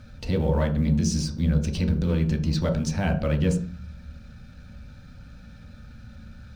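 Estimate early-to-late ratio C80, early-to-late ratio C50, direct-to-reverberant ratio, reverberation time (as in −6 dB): 14.5 dB, 10.0 dB, 1.5 dB, 0.40 s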